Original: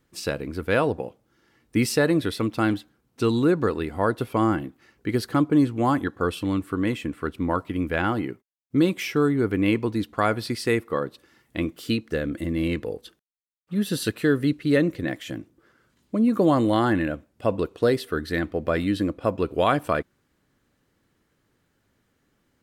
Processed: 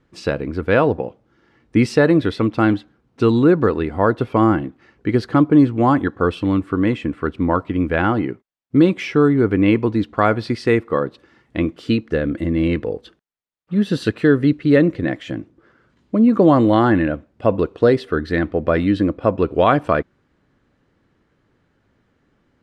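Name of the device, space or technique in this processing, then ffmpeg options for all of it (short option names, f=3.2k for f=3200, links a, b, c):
through cloth: -af "lowpass=6.7k,highshelf=f=3.7k:g=-12,volume=7dB"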